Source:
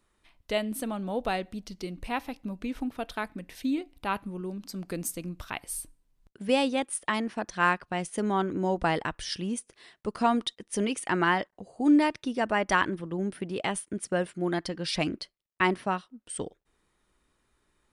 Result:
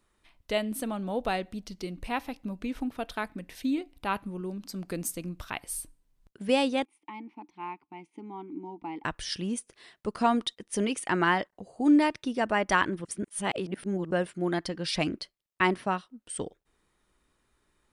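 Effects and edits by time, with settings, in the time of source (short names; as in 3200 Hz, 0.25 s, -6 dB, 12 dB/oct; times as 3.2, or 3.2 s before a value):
6.85–9.04 vowel filter u
13.05–14.11 reverse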